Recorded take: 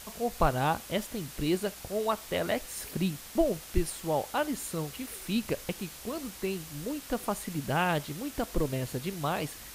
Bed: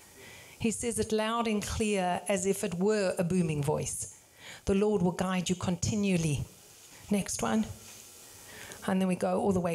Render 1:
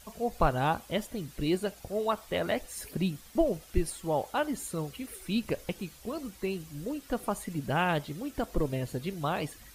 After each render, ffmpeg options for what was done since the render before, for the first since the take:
-af "afftdn=nr=10:nf=-46"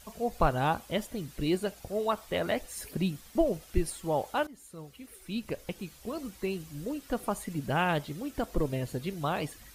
-filter_complex "[0:a]asplit=2[s0][s1];[s0]atrim=end=4.47,asetpts=PTS-STARTPTS,afade=t=out:st=4.466:d=0.004:c=hsin:silence=0.125893[s2];[s1]atrim=start=4.47,asetpts=PTS-STARTPTS,afade=t=in:d=1.74:silence=0.125893[s3];[s2][s3]concat=n=2:v=0:a=1"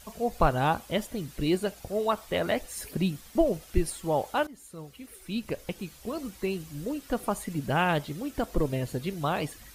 -af "volume=1.33"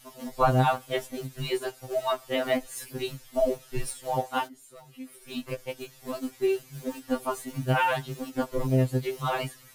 -filter_complex "[0:a]asplit=2[s0][s1];[s1]aeval=exprs='val(0)*gte(abs(val(0)),0.0224)':c=same,volume=0.447[s2];[s0][s2]amix=inputs=2:normalize=0,afftfilt=real='re*2.45*eq(mod(b,6),0)':imag='im*2.45*eq(mod(b,6),0)':win_size=2048:overlap=0.75"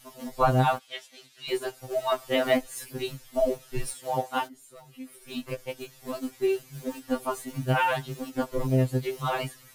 -filter_complex "[0:a]asplit=3[s0][s1][s2];[s0]afade=t=out:st=0.78:d=0.02[s3];[s1]bandpass=f=3600:t=q:w=1.1,afade=t=in:st=0.78:d=0.02,afade=t=out:st=1.47:d=0.02[s4];[s2]afade=t=in:st=1.47:d=0.02[s5];[s3][s4][s5]amix=inputs=3:normalize=0,asettb=1/sr,asplit=3[s6][s7][s8];[s6]atrim=end=3.944[s9];[s7]atrim=start=3.94:end=4.42,asetpts=PTS-STARTPTS,afade=t=in:d=0.004:c=qsin,afade=t=out:st=0.476:d=0.004:c=qsin,highpass=110[s10];[s8]atrim=start=4.416[s11];[s9][s10]acrossfade=d=0.004:c1=hsin:c2=qsin[s12];[s12][s11]acrossfade=d=0.004:c1=qsin:c2=hsin,asplit=3[s13][s14][s15];[s13]atrim=end=2.122[s16];[s14]atrim=start=2.118:end=2.612,asetpts=PTS-STARTPTS,volume=1.41[s17];[s15]atrim=start=2.608[s18];[s16][s17]acrossfade=d=0.004:c1=hsin:c2=hsin[s19];[s19][s18]acrossfade=d=0.004:c1=hsin:c2=hsin"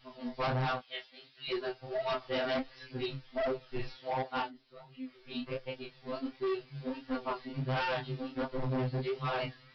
-af "flanger=delay=22.5:depth=7.1:speed=1.4,aresample=11025,volume=29.9,asoftclip=hard,volume=0.0335,aresample=44100"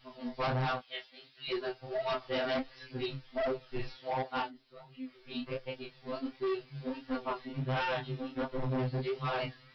-filter_complex "[0:a]asettb=1/sr,asplit=3[s0][s1][s2];[s0]atrim=end=7.224[s3];[s1]atrim=start=7.22:end=8.79,asetpts=PTS-STARTPTS,afade=t=in:d=0.004:c=qsin,afade=t=out:st=1.566:d=0.004:c=qsin,bandreject=f=4600:w=9.1[s4];[s2]atrim=start=8.786[s5];[s3][s4]acrossfade=d=0.004:c1=hsin:c2=qsin[s6];[s6][s5]acrossfade=d=0.004:c1=qsin:c2=hsin"

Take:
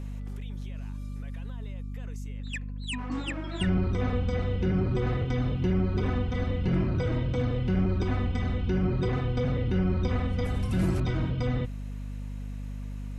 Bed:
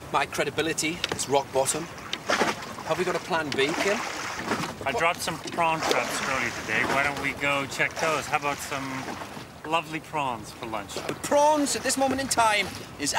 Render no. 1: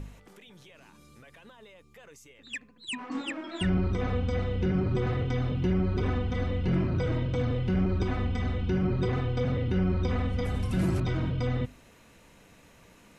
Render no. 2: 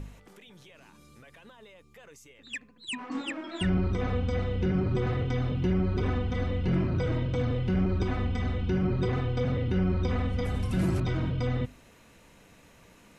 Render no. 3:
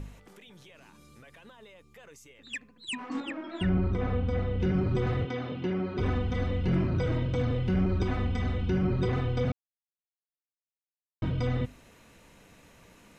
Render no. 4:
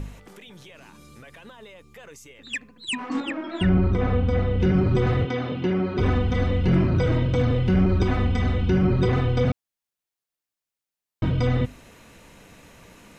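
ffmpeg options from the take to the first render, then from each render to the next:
-af "bandreject=f=50:t=h:w=4,bandreject=f=100:t=h:w=4,bandreject=f=150:t=h:w=4,bandreject=f=200:t=h:w=4,bandreject=f=250:t=h:w=4"
-af anull
-filter_complex "[0:a]asettb=1/sr,asplit=3[s0][s1][s2];[s0]atrim=end=3.204[s3];[s1]atrim=start=3.2:end=4.6,asetpts=PTS-STARTPTS,afade=t=in:d=0.004:c=qsin,afade=t=out:st=1.396:d=0.004:c=qsin,aemphasis=mode=reproduction:type=75kf[s4];[s2]atrim=start=4.596[s5];[s3][s4]acrossfade=d=0.004:c1=hsin:c2=qsin[s6];[s6][s5]acrossfade=d=0.004:c1=qsin:c2=hsin,asettb=1/sr,asplit=3[s7][s8][s9];[s7]atrim=end=5.254[s10];[s8]atrim=start=5.25:end=5.99,asetpts=PTS-STARTPTS,afade=t=in:d=0.004:c=qsin,afade=t=out:st=0.736:d=0.004:c=qsin,highpass=220,lowpass=4800[s11];[s9]atrim=start=5.986[s12];[s10][s11]acrossfade=d=0.004:c1=hsin:c2=qsin[s13];[s13][s12]acrossfade=d=0.004:c1=qsin:c2=hsin,asplit=3[s14][s15][s16];[s14]atrim=end=9.52,asetpts=PTS-STARTPTS,afade=t=out:st=9.516:d=0.004:c=hsin[s17];[s15]atrim=start=9.52:end=11.22,asetpts=PTS-STARTPTS,volume=0[s18];[s16]atrim=start=11.22,asetpts=PTS-STARTPTS,afade=t=in:d=0.004:c=hsin[s19];[s17][s18][s19]concat=n=3:v=0:a=1"
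-af "volume=2.24"

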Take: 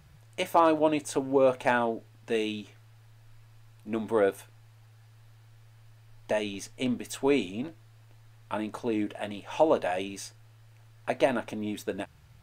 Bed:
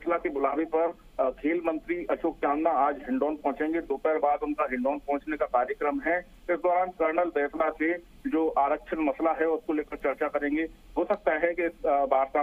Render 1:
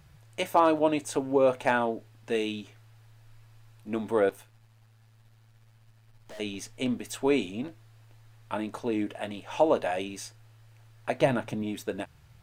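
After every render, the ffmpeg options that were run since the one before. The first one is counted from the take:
-filter_complex "[0:a]asettb=1/sr,asplit=3[s0][s1][s2];[s0]atrim=end=4.294[s3];[s1]atrim=start=4.29:end=6.4,asetpts=PTS-STARTPTS,afade=t=in:d=0.004:c=qsin,afade=t=out:st=2.106:d=0.004:c=qsin,aeval=exprs='(tanh(141*val(0)+0.7)-tanh(0.7))/141':c=same[s4];[s2]atrim=start=6.396[s5];[s3][s4]acrossfade=d=0.004:c1=hsin:c2=qsin[s6];[s6][s5]acrossfade=d=0.004:c1=qsin:c2=hsin,asettb=1/sr,asplit=3[s7][s8][s9];[s7]atrim=end=11.204[s10];[s8]atrim=start=11.2:end=11.63,asetpts=PTS-STARTPTS,afade=t=in:d=0.004:c=qsin,afade=t=out:st=0.426:d=0.004:c=qsin,equalizer=f=140:w=2.4:g=14[s11];[s9]atrim=start=11.626[s12];[s10][s11]acrossfade=d=0.004:c1=hsin:c2=qsin[s13];[s13][s12]acrossfade=d=0.004:c1=qsin:c2=hsin"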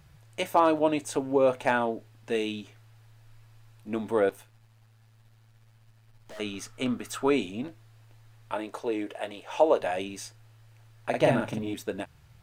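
-filter_complex "[0:a]asettb=1/sr,asplit=3[s0][s1][s2];[s0]atrim=end=6.364[s3];[s1]atrim=start=6.36:end=7.3,asetpts=PTS-STARTPTS,afade=t=in:d=0.004:c=qsin,afade=t=out:st=0.936:d=0.004:c=qsin,equalizer=f=1300:w=3.6:g=14.5[s4];[s2]atrim=start=7.296[s5];[s3][s4]acrossfade=d=0.004:c1=hsin:c2=qsin[s6];[s6][s5]acrossfade=d=0.004:c1=qsin:c2=hsin,asettb=1/sr,asplit=3[s7][s8][s9];[s7]atrim=end=8.524[s10];[s8]atrim=start=8.52:end=9.81,asetpts=PTS-STARTPTS,afade=t=in:d=0.004:c=qsin,afade=t=out:st=1.286:d=0.004:c=qsin,lowshelf=f=300:t=q:w=1.5:g=-8[s11];[s9]atrim=start=9.806[s12];[s10][s11]acrossfade=d=0.004:c1=hsin:c2=qsin[s13];[s13][s12]acrossfade=d=0.004:c1=qsin:c2=hsin,asettb=1/sr,asplit=3[s14][s15][s16];[s14]atrim=end=11.094[s17];[s15]atrim=start=11.09:end=11.74,asetpts=PTS-STARTPTS,afade=t=in:d=0.004:c=qsin,afade=t=out:st=0.646:d=0.004:c=qsin,asplit=2[s18][s19];[s19]adelay=45,volume=0.75[s20];[s18][s20]amix=inputs=2:normalize=0,atrim=end_sample=28665[s21];[s16]atrim=start=11.736[s22];[s17][s21]acrossfade=d=0.004:c1=hsin:c2=qsin[s23];[s23][s22]acrossfade=d=0.004:c1=qsin:c2=hsin"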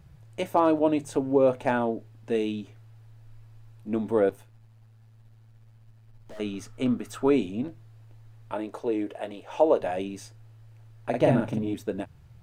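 -af "tiltshelf=f=680:g=5.5,bandreject=f=50:t=h:w=6,bandreject=f=100:t=h:w=6,bandreject=f=150:t=h:w=6"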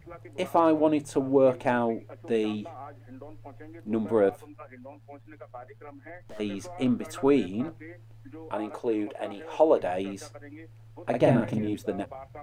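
-filter_complex "[1:a]volume=0.119[s0];[0:a][s0]amix=inputs=2:normalize=0"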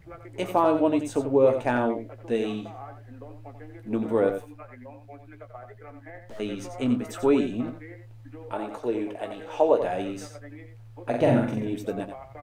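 -filter_complex "[0:a]asplit=2[s0][s1];[s1]adelay=17,volume=0.299[s2];[s0][s2]amix=inputs=2:normalize=0,aecho=1:1:89:0.376"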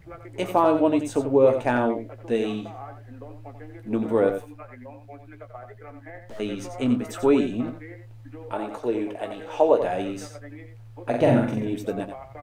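-af "volume=1.26"

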